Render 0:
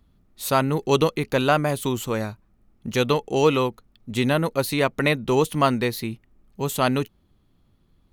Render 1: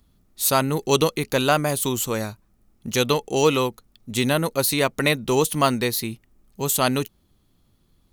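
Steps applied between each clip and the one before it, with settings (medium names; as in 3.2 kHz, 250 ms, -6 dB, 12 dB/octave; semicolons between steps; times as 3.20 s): tone controls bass -1 dB, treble +10 dB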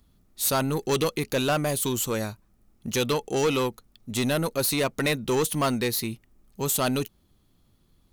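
saturation -17 dBFS, distortion -11 dB; trim -1 dB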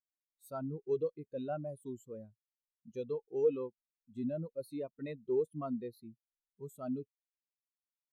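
spectral contrast expander 2.5:1; trim -2 dB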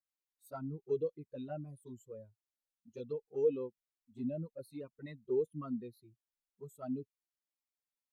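touch-sensitive flanger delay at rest 3.8 ms, full sweep at -31.5 dBFS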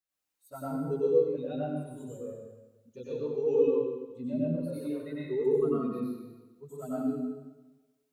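plate-style reverb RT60 1.2 s, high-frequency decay 0.9×, pre-delay 80 ms, DRR -8.5 dB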